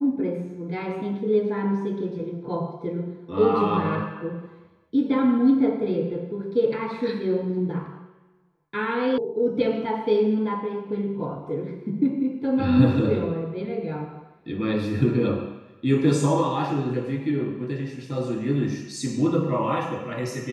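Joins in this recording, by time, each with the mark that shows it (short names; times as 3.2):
9.18 sound cut off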